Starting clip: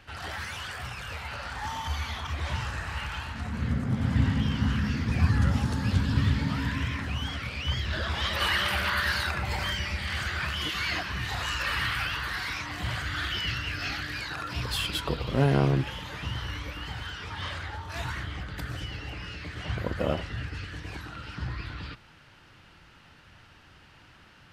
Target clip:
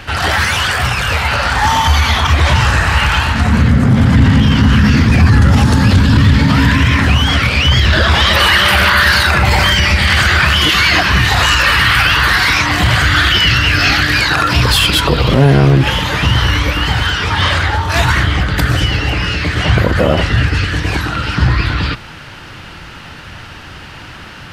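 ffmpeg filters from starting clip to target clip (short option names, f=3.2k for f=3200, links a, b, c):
-filter_complex "[0:a]asplit=2[a][b];[b]aeval=exprs='0.316*sin(PI/2*2*val(0)/0.316)':c=same,volume=-7dB[c];[a][c]amix=inputs=2:normalize=0,alimiter=level_in=16dB:limit=-1dB:release=50:level=0:latency=1,volume=-1dB"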